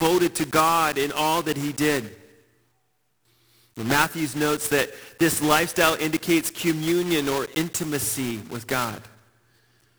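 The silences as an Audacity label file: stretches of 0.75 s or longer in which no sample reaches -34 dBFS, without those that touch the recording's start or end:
2.090000	3.770000	silence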